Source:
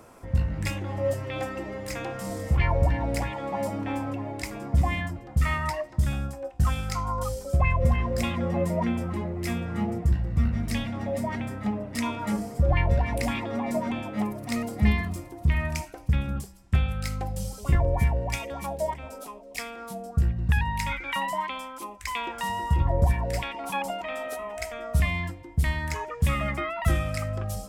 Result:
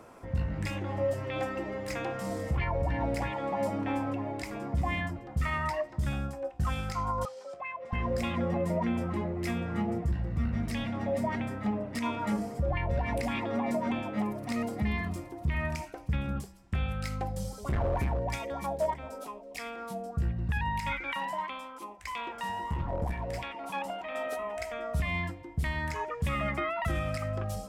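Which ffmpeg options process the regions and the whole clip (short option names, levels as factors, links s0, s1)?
-filter_complex "[0:a]asettb=1/sr,asplit=3[s0][s1][s2];[s0]atrim=end=7.254[s3];[s1]atrim=start=7.25:end=7.93,asetpts=PTS-STARTPTS,afade=t=in:d=0.004:c=qsin,afade=t=out:st=0.676:d=0.004:c=qsin,acompressor=threshold=0.0251:ratio=2:attack=3.2:release=140:knee=1:detection=peak,highpass=680,lowpass=4700[s4];[s2]atrim=start=7.926[s5];[s3][s4]acrossfade=d=0.004:c1=hsin:c2=qsin[s6];[s6][s5]acrossfade=d=0.004:c1=qsin:c2=hsin,asettb=1/sr,asplit=3[s7][s8][s9];[s7]atrim=end=17.304[s10];[s8]atrim=start=17.3:end=19.21,asetpts=PTS-STARTPTS,afade=t=in:d=0.004:c=qsin,afade=t=out:st=1.906:d=0.004:c=qsin,equalizer=f=2700:w=4.3:g=-6.5,asoftclip=type=hard:threshold=0.0841[s11];[s9]atrim=start=19.206[s12];[s10][s11]acrossfade=d=0.004:c1=hsin:c2=qsin[s13];[s13][s12]acrossfade=d=0.004:c1=qsin:c2=hsin,asettb=1/sr,asplit=3[s14][s15][s16];[s14]atrim=end=21.134[s17];[s15]atrim=start=21.13:end=24.15,asetpts=PTS-STARTPTS,afade=t=in:d=0.004:c=qsin,afade=t=out:st=3.016:d=0.004:c=qsin,flanger=delay=6.3:depth=7.9:regen=-82:speed=1.7:shape=triangular,aeval=exprs='clip(val(0),-1,0.0398)':c=same[s18];[s16]atrim=start=24.146[s19];[s17][s18]acrossfade=d=0.004:c1=hsin:c2=qsin[s20];[s20][s19]acrossfade=d=0.004:c1=qsin:c2=hsin,lowshelf=f=110:g=-6.5,alimiter=limit=0.0891:level=0:latency=1:release=85,highshelf=f=5200:g=-8.5"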